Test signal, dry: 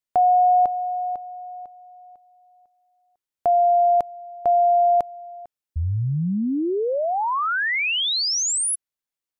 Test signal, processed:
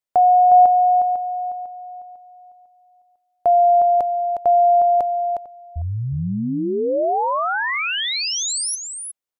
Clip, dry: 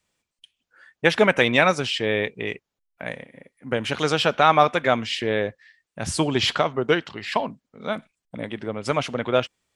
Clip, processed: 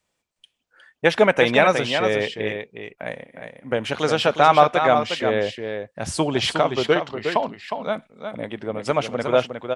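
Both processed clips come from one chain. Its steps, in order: peaking EQ 650 Hz +5 dB 1.4 oct; on a send: delay 360 ms -7 dB; on the sum: trim -1.5 dB

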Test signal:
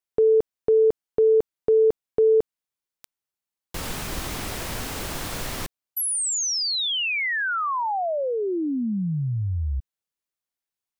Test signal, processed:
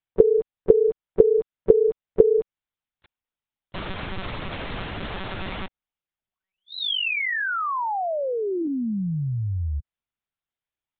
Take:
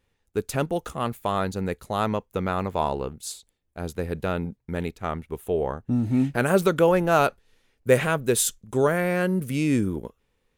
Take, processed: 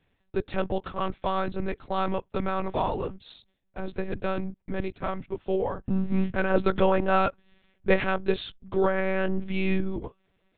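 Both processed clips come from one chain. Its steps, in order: in parallel at -2 dB: compression 6:1, threshold -28 dBFS; on the sum: monotone LPC vocoder at 8 kHz 190 Hz; trim -4 dB

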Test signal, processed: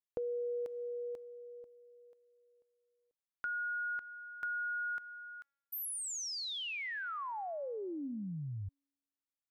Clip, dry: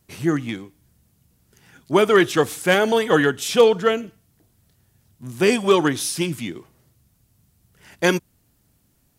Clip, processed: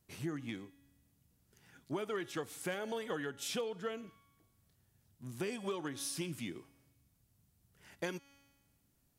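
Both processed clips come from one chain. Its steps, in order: feedback comb 280 Hz, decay 1.2 s, mix 50%; compression 8:1, threshold -30 dBFS; trim -5.5 dB

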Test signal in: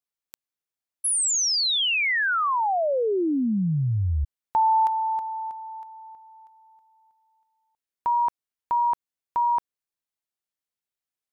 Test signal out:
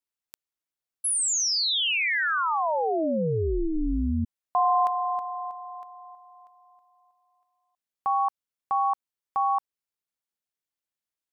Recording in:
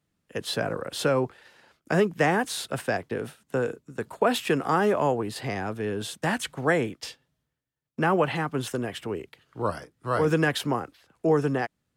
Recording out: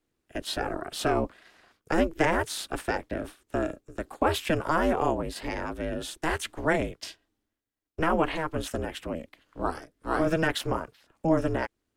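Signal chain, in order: ring modulator 160 Hz; trim +1 dB

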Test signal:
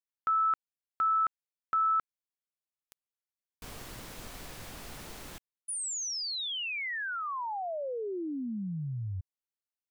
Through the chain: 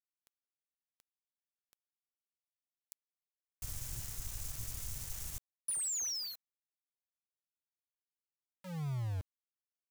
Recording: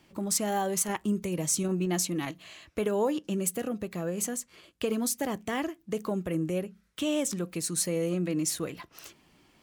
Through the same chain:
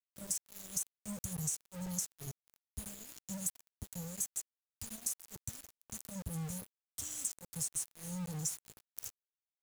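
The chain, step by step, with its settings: elliptic band-stop 120–6200 Hz, stop band 50 dB; compression 12:1, threshold -42 dBFS; small samples zeroed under -49.5 dBFS; trim +7.5 dB

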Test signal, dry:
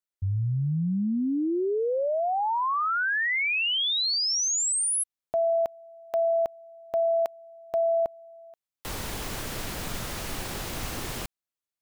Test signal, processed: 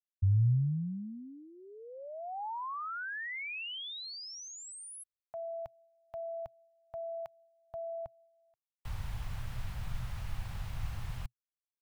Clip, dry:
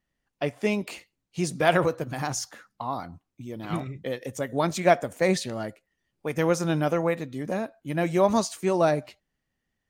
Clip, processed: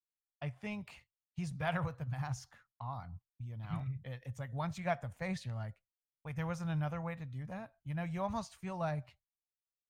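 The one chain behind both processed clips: expander -43 dBFS; FFT filter 120 Hz 0 dB, 340 Hz -29 dB, 830 Hz -13 dB, 2.7 kHz -15 dB, 6.9 kHz -22 dB; trim +1 dB

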